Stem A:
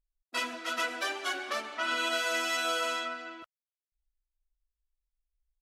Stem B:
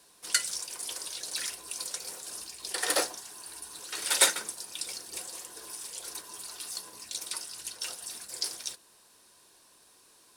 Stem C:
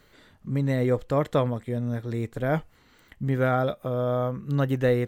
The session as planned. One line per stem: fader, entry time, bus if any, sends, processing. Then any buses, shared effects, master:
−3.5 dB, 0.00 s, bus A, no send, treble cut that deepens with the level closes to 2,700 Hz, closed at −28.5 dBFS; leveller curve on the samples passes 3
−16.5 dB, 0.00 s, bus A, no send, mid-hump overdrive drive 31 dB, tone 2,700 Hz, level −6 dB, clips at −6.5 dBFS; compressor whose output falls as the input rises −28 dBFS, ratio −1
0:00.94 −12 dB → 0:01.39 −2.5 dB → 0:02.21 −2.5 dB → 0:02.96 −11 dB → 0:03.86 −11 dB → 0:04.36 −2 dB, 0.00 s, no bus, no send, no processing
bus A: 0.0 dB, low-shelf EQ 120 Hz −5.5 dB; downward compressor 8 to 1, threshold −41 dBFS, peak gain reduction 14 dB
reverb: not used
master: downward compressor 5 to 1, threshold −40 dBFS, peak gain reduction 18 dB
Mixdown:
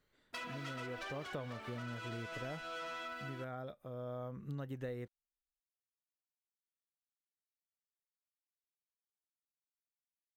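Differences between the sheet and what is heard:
stem A −3.5 dB → −12.5 dB
stem B: muted
stem C −12.0 dB → −19.5 dB

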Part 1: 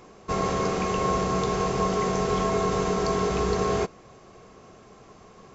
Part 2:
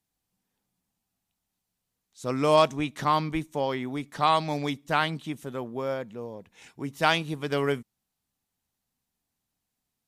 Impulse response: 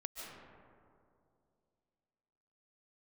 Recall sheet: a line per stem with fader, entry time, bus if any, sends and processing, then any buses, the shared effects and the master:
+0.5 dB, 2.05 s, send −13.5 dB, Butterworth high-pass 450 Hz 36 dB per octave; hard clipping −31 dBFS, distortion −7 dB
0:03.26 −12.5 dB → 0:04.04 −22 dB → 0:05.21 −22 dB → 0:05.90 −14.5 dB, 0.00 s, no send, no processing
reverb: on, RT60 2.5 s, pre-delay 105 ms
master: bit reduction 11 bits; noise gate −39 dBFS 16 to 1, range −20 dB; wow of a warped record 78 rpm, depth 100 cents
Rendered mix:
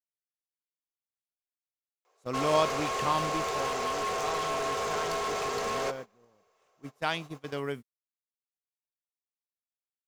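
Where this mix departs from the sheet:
stem 2 −12.5 dB → −6.0 dB
master: missing wow of a warped record 78 rpm, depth 100 cents

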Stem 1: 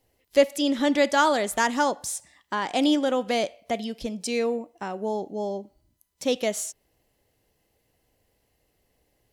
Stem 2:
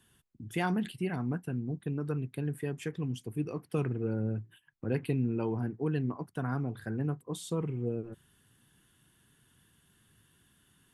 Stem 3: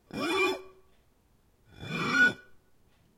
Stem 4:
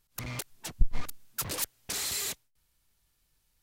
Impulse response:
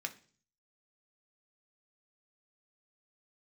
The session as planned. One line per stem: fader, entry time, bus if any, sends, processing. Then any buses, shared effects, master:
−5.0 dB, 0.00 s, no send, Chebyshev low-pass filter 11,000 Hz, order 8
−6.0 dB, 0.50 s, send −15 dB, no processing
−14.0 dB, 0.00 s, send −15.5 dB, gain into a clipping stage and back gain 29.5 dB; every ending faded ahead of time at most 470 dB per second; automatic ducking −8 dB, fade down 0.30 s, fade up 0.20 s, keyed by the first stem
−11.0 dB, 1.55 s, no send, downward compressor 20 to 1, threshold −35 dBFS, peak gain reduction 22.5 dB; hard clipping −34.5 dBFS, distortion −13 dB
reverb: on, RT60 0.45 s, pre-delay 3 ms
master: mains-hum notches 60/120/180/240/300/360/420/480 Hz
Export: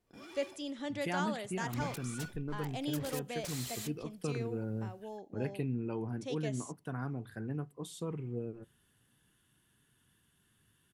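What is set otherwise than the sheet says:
stem 1 −5.0 dB → −16.0 dB
stem 4 −11.0 dB → −4.0 dB
master: missing mains-hum notches 60/120/180/240/300/360/420/480 Hz

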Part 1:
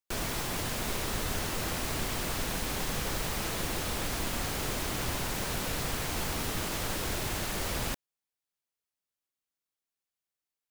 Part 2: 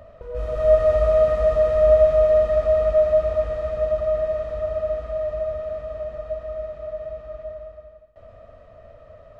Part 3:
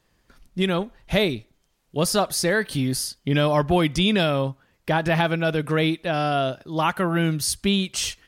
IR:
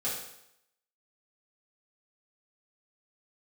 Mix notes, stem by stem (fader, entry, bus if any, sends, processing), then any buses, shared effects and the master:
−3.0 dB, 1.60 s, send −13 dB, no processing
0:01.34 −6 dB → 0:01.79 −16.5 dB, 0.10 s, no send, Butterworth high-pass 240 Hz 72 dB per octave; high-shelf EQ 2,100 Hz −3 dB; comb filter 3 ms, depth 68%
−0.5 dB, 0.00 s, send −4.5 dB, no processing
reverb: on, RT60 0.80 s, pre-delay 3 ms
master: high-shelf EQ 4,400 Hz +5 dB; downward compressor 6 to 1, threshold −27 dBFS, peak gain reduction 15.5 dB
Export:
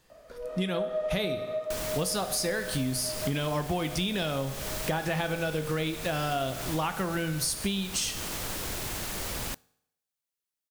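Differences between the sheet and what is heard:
stem 1: send −13 dB → −22.5 dB
stem 2: missing comb filter 3 ms, depth 68%
reverb return −7.0 dB

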